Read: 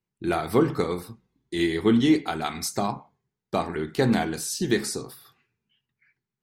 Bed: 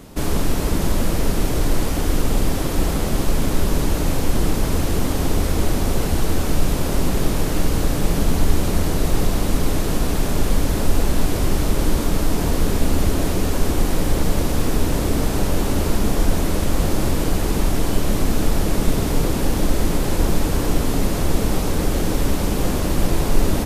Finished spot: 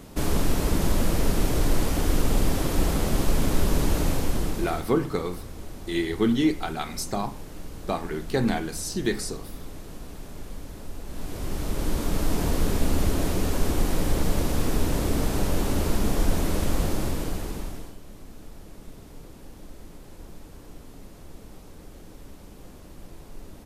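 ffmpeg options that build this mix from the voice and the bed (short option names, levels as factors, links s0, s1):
-filter_complex "[0:a]adelay=4350,volume=0.75[s0];[1:a]volume=3.76,afade=t=out:st=4:d=0.93:silence=0.149624,afade=t=in:st=11.04:d=1.29:silence=0.177828,afade=t=out:st=16.7:d=1.26:silence=0.0944061[s1];[s0][s1]amix=inputs=2:normalize=0"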